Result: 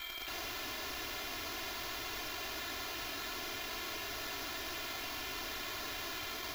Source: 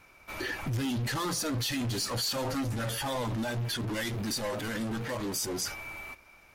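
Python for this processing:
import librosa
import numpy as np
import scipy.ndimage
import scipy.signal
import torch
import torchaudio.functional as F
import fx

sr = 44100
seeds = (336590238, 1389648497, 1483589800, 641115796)

p1 = fx.graphic_eq(x, sr, hz=(125, 250, 2000), db=(-10, -4, 10))
p2 = p1 + fx.echo_thinned(p1, sr, ms=280, feedback_pct=76, hz=240.0, wet_db=-12.5, dry=0)
p3 = (np.kron(scipy.signal.resample_poly(p2, 1, 8), np.eye(8)[0]) * 8)[:len(p2)]
p4 = (np.mod(10.0 ** (24.5 / 20.0) * p3 + 1.0, 2.0) - 1.0) / 10.0 ** (24.5 / 20.0)
p5 = scipy.signal.lfilter(np.full(5, 1.0 / 5), 1.0, p4)
p6 = p5 + 0.84 * np.pad(p5, (int(2.9 * sr / 1000.0), 0))[:len(p5)]
p7 = fx.env_flatten(p6, sr, amount_pct=50)
y = F.gain(torch.from_numpy(p7), 1.0).numpy()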